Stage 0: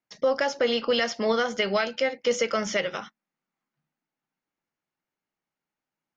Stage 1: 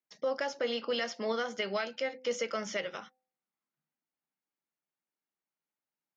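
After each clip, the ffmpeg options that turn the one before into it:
ffmpeg -i in.wav -af "highpass=160,bandreject=frequency=256.5:width_type=h:width=4,bandreject=frequency=513:width_type=h:width=4,bandreject=frequency=769.5:width_type=h:width=4,volume=-8.5dB" out.wav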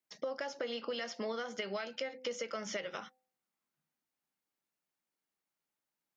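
ffmpeg -i in.wav -af "acompressor=threshold=-38dB:ratio=6,volume=2.5dB" out.wav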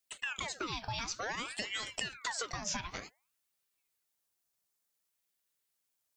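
ffmpeg -i in.wav -af "bass=frequency=250:gain=1,treble=frequency=4000:gain=11,aeval=exprs='val(0)*sin(2*PI*1500*n/s+1500*0.75/0.55*sin(2*PI*0.55*n/s))':channel_layout=same,volume=2dB" out.wav

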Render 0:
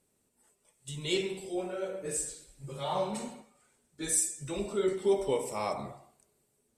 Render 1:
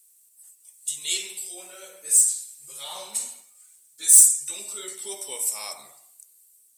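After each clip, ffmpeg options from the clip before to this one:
ffmpeg -i in.wav -af "aderivative,aeval=exprs='0.2*sin(PI/2*2*val(0)/0.2)':channel_layout=same,crystalizer=i=1.5:c=0" out.wav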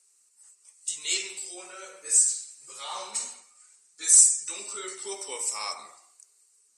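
ffmpeg -i in.wav -af "highpass=280,equalizer=frequency=630:width_type=q:width=4:gain=-6,equalizer=frequency=1200:width_type=q:width=4:gain=6,equalizer=frequency=3400:width_type=q:width=4:gain=-9,lowpass=frequency=7300:width=0.5412,lowpass=frequency=7300:width=1.3066,volume=3.5dB" -ar 32000 -c:a libmp3lame -b:a 56k out.mp3

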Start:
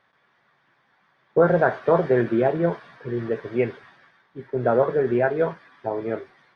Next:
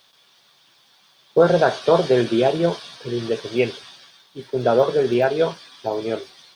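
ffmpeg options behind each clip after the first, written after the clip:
ffmpeg -i in.wav -af "equalizer=frequency=550:width_type=o:width=2.2:gain=3,aexciter=amount=14.7:drive=3.8:freq=2900" out.wav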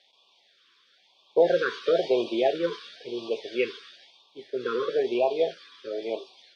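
ffmpeg -i in.wav -af "highpass=410,lowpass=4000,afftfilt=real='re*(1-between(b*sr/1024,690*pow(1700/690,0.5+0.5*sin(2*PI*1*pts/sr))/1.41,690*pow(1700/690,0.5+0.5*sin(2*PI*1*pts/sr))*1.41))':imag='im*(1-between(b*sr/1024,690*pow(1700/690,0.5+0.5*sin(2*PI*1*pts/sr))/1.41,690*pow(1700/690,0.5+0.5*sin(2*PI*1*pts/sr))*1.41))':win_size=1024:overlap=0.75,volume=-3.5dB" out.wav

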